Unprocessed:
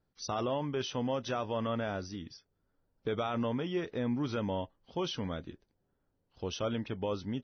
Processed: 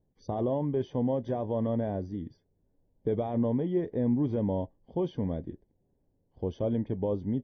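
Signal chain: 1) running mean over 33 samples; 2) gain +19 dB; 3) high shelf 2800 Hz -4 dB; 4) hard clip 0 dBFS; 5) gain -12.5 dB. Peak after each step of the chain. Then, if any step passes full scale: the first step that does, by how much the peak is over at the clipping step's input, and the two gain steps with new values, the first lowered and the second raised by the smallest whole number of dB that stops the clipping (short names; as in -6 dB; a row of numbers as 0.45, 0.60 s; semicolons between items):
-24.5, -5.5, -5.5, -5.5, -18.0 dBFS; no overload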